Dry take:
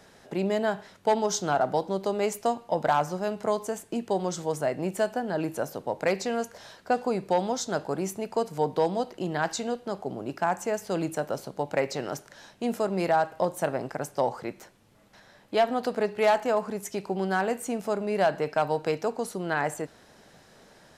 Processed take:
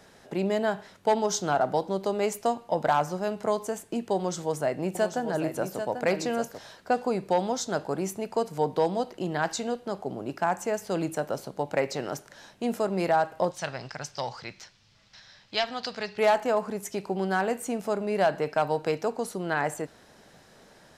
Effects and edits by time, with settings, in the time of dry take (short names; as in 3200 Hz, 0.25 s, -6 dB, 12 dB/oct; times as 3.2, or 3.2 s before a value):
4.16–6.59 echo 0.79 s -8 dB
13.51–16.18 EQ curve 120 Hz 0 dB, 300 Hz -12 dB, 560 Hz -9 dB, 5200 Hz +11 dB, 11000 Hz -15 dB